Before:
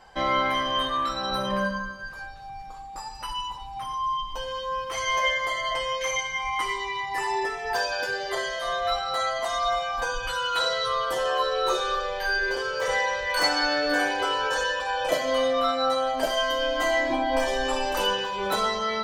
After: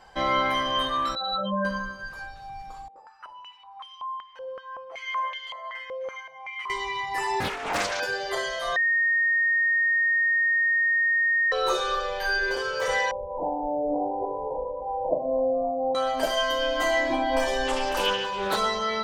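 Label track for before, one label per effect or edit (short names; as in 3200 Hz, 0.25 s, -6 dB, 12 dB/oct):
1.150000	1.650000	spectral contrast raised exponent 3
2.880000	6.700000	stepped band-pass 5.3 Hz 500–3100 Hz
7.400000	8.000000	Doppler distortion depth 0.96 ms
8.760000	11.520000	bleep 1850 Hz -19.5 dBFS
13.110000	15.950000	steep low-pass 940 Hz 96 dB/oct
17.670000	18.570000	Doppler distortion depth 0.17 ms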